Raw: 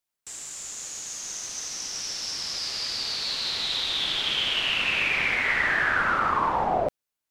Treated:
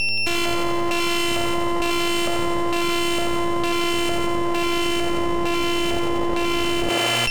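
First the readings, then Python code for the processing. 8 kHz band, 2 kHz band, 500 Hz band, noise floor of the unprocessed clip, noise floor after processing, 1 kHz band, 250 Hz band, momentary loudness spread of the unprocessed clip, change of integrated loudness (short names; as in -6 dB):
+1.0 dB, 0.0 dB, +11.5 dB, under -85 dBFS, -21 dBFS, +4.0 dB, +20.0 dB, 11 LU, +3.5 dB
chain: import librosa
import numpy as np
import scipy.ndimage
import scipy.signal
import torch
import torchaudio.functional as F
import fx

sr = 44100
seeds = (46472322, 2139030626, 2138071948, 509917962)

p1 = np.r_[np.sort(x[:len(x) // 128 * 128].reshape(-1, 128), axis=1).ravel(), x[len(x) // 128 * 128:]]
p2 = fx.fold_sine(p1, sr, drive_db=8, ceiling_db=-12.0)
p3 = p1 + (p2 * 10.0 ** (-8.5 / 20.0))
p4 = fx.rider(p3, sr, range_db=3, speed_s=0.5)
p5 = p4 + 10.0 ** (-30.0 / 20.0) * np.sin(2.0 * np.pi * 2700.0 * np.arange(len(p4)) / sr)
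p6 = fx.filter_lfo_lowpass(p5, sr, shape='square', hz=1.1, low_hz=560.0, high_hz=4200.0, q=3.8)
p7 = np.maximum(p6, 0.0)
p8 = p7 + fx.echo_thinned(p7, sr, ms=88, feedback_pct=75, hz=580.0, wet_db=-4, dry=0)
p9 = fx.dmg_buzz(p8, sr, base_hz=120.0, harmonics=7, level_db=-52.0, tilt_db=-4, odd_only=False)
y = fx.env_flatten(p9, sr, amount_pct=100)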